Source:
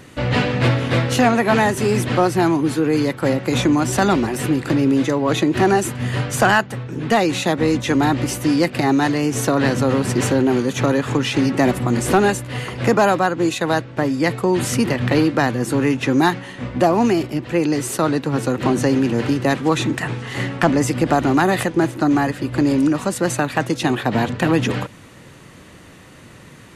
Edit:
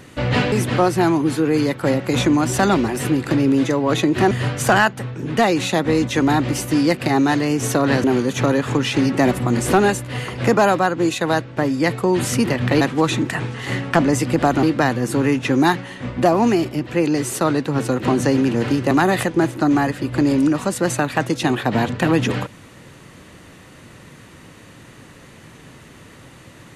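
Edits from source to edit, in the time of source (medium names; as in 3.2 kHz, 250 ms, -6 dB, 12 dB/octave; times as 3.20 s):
0.52–1.91 s: delete
5.70–6.04 s: delete
9.77–10.44 s: delete
19.49–21.31 s: move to 15.21 s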